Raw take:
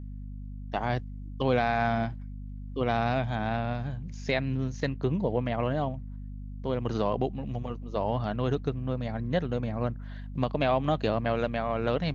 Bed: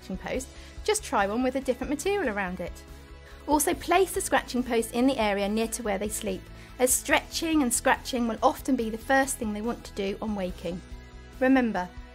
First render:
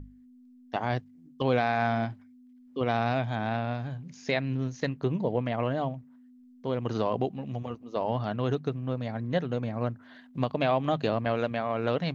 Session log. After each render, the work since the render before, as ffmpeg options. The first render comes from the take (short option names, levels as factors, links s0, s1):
-af "bandreject=f=50:t=h:w=6,bandreject=f=100:t=h:w=6,bandreject=f=150:t=h:w=6,bandreject=f=200:t=h:w=6"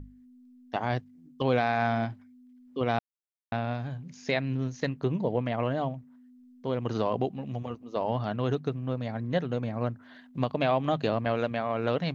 -filter_complex "[0:a]asplit=3[s0][s1][s2];[s0]atrim=end=2.99,asetpts=PTS-STARTPTS,afade=t=out:st=2.986:d=0.004:c=hsin[s3];[s1]atrim=start=2.99:end=3.52,asetpts=PTS-STARTPTS,volume=0[s4];[s2]atrim=start=3.52,asetpts=PTS-STARTPTS,afade=t=in:d=0.004:c=hsin[s5];[s3][s4][s5]concat=n=3:v=0:a=1"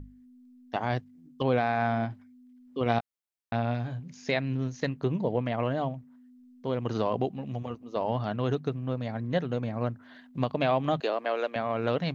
-filter_complex "[0:a]asettb=1/sr,asplit=3[s0][s1][s2];[s0]atrim=end=1.434[s3];[s1]atrim=start=1.43:end=2.11,asetpts=PTS-STARTPTS,afade=t=in:d=0.004:c=qsin,afade=t=out:st=0.676:d=0.004:c=qsin,highshelf=f=3200:g=-7.5[s4];[s2]atrim=start=2.106[s5];[s3][s4]acrossfade=d=0.004:c1=hsin:c2=qsin[s6];[s6][s5]acrossfade=d=0.004:c1=qsin:c2=hsin,asettb=1/sr,asplit=3[s7][s8][s9];[s7]atrim=end=2.844[s10];[s8]atrim=start=2.84:end=4,asetpts=PTS-STARTPTS,afade=t=in:d=0.004:c=qsin,afade=t=out:st=1.156:d=0.004:c=qsin,asplit=2[s11][s12];[s12]adelay=17,volume=0.422[s13];[s11][s13]amix=inputs=2:normalize=0,atrim=end_sample=51156[s14];[s9]atrim=start=3.996[s15];[s10][s14]acrossfade=d=0.004:c1=hsin:c2=qsin[s16];[s16][s15]acrossfade=d=0.004:c1=qsin:c2=hsin,asettb=1/sr,asplit=3[s17][s18][s19];[s17]atrim=end=11.004[s20];[s18]atrim=start=11:end=11.56,asetpts=PTS-STARTPTS,afade=t=in:d=0.004:c=qsin,afade=t=out:st=0.556:d=0.004:c=qsin,highpass=f=340:w=0.5412,highpass=f=340:w=1.3066[s21];[s19]atrim=start=11.556[s22];[s20][s21]acrossfade=d=0.004:c1=hsin:c2=qsin[s23];[s23][s22]acrossfade=d=0.004:c1=qsin:c2=hsin"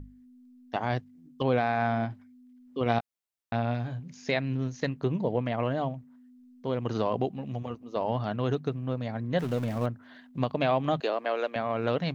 -filter_complex "[0:a]asettb=1/sr,asplit=3[s0][s1][s2];[s0]atrim=end=9.394[s3];[s1]atrim=start=9.39:end=9.86,asetpts=PTS-STARTPTS,afade=t=in:d=0.004:c=qsin,afade=t=out:st=0.466:d=0.004:c=qsin,aeval=exprs='val(0)+0.5*0.0141*sgn(val(0))':c=same[s4];[s2]atrim=start=9.856[s5];[s3][s4]acrossfade=d=0.004:c1=hsin:c2=qsin[s6];[s6][s5]acrossfade=d=0.004:c1=qsin:c2=hsin"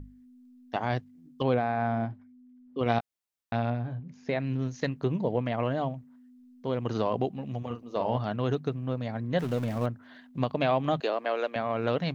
-filter_complex "[0:a]asettb=1/sr,asplit=3[s0][s1][s2];[s0]atrim=end=1.544[s3];[s1]atrim=start=1.54:end=2.79,asetpts=PTS-STARTPTS,afade=t=in:d=0.004:c=qsin,afade=t=out:st=1.246:d=0.004:c=qsin,highshelf=f=2000:g=-11.5[s4];[s2]atrim=start=2.786[s5];[s3][s4]acrossfade=d=0.004:c1=hsin:c2=qsin[s6];[s6][s5]acrossfade=d=0.004:c1=qsin:c2=hsin,asettb=1/sr,asplit=3[s7][s8][s9];[s7]atrim=end=3.704[s10];[s8]atrim=start=3.7:end=4.4,asetpts=PTS-STARTPTS,afade=t=in:d=0.004:c=qsin,afade=t=out:st=0.696:d=0.004:c=qsin,lowpass=f=1200:p=1[s11];[s9]atrim=start=4.396[s12];[s10][s11]acrossfade=d=0.004:c1=hsin:c2=qsin[s13];[s13][s12]acrossfade=d=0.004:c1=qsin:c2=hsin,asettb=1/sr,asplit=3[s14][s15][s16];[s14]atrim=end=7.664[s17];[s15]atrim=start=7.66:end=8.18,asetpts=PTS-STARTPTS,afade=t=in:d=0.004:c=qsin,afade=t=out:st=0.516:d=0.004:c=qsin,asplit=2[s18][s19];[s19]adelay=42,volume=0.422[s20];[s18][s20]amix=inputs=2:normalize=0,atrim=end_sample=22932[s21];[s16]atrim=start=8.176[s22];[s17][s21]acrossfade=d=0.004:c1=hsin:c2=qsin[s23];[s23][s22]acrossfade=d=0.004:c1=qsin:c2=hsin"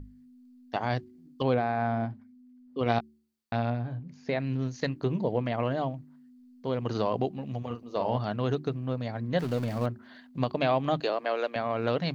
-af "equalizer=f=4500:t=o:w=0.21:g=7,bandreject=f=74.07:t=h:w=4,bandreject=f=148.14:t=h:w=4,bandreject=f=222.21:t=h:w=4,bandreject=f=296.28:t=h:w=4,bandreject=f=370.35:t=h:w=4"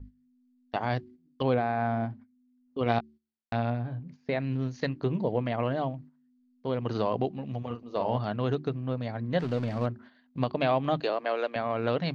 -af "agate=range=0.251:threshold=0.00447:ratio=16:detection=peak,lowpass=4700"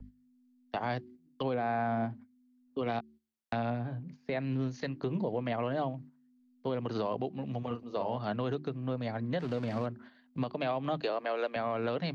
-filter_complex "[0:a]acrossover=split=120|440|1000[s0][s1][s2][s3];[s0]acompressor=threshold=0.00316:ratio=6[s4];[s4][s1][s2][s3]amix=inputs=4:normalize=0,alimiter=limit=0.0708:level=0:latency=1:release=169"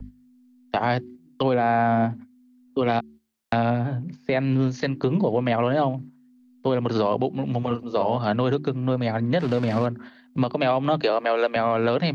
-af "volume=3.55"